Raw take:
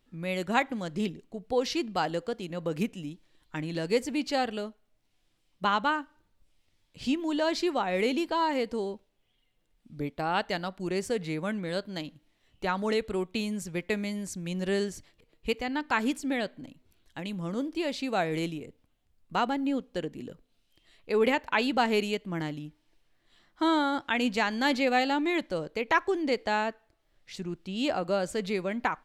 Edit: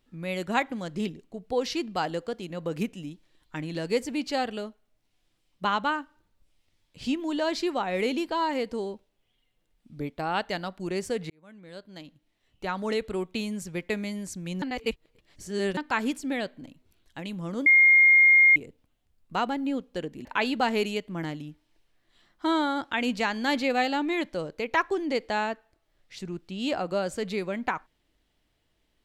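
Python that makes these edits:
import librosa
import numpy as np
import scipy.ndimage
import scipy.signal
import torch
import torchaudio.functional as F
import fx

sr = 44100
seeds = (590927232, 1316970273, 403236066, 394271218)

y = fx.edit(x, sr, fx.fade_in_span(start_s=11.3, length_s=1.73),
    fx.reverse_span(start_s=14.62, length_s=1.15),
    fx.bleep(start_s=17.66, length_s=0.9, hz=2130.0, db=-13.5),
    fx.cut(start_s=20.25, length_s=1.17), tone=tone)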